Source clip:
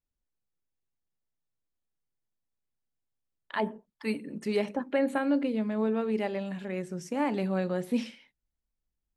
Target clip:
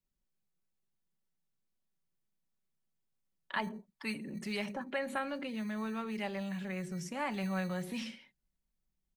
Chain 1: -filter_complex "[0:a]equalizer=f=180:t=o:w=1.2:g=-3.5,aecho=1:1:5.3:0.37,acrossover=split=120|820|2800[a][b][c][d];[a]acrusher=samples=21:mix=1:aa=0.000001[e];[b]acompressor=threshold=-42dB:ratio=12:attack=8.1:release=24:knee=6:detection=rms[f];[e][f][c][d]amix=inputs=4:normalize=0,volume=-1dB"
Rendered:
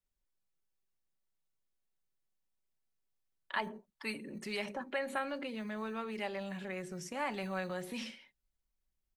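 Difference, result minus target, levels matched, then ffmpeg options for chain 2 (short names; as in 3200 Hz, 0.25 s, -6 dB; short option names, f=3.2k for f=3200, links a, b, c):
250 Hz band -3.0 dB
-filter_complex "[0:a]equalizer=f=180:t=o:w=1.2:g=6.5,aecho=1:1:5.3:0.37,acrossover=split=120|820|2800[a][b][c][d];[a]acrusher=samples=21:mix=1:aa=0.000001[e];[b]acompressor=threshold=-42dB:ratio=12:attack=8.1:release=24:knee=6:detection=rms[f];[e][f][c][d]amix=inputs=4:normalize=0,volume=-1dB"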